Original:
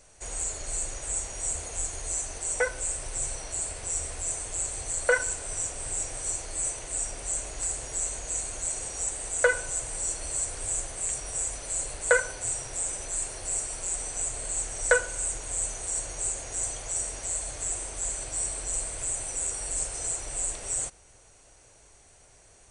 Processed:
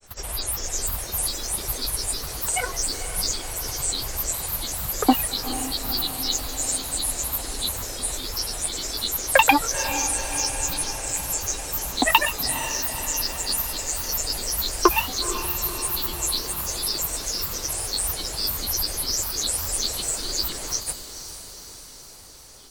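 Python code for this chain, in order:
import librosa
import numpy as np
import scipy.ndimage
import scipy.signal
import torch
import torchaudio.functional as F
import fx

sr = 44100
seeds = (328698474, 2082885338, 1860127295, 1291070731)

y = fx.granulator(x, sr, seeds[0], grain_ms=100.0, per_s=20.0, spray_ms=100.0, spread_st=12)
y = fx.echo_diffused(y, sr, ms=479, feedback_pct=62, wet_db=-11)
y = y * 10.0 ** (6.5 / 20.0)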